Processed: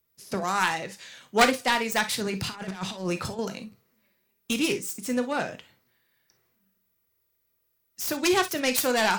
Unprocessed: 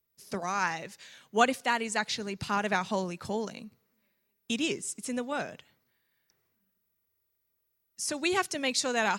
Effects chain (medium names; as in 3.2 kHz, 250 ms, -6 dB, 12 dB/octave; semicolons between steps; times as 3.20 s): self-modulated delay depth 0.24 ms; 2.20–3.39 s: compressor with a negative ratio -36 dBFS, ratio -0.5; gated-style reverb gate 80 ms flat, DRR 8 dB; trim +5 dB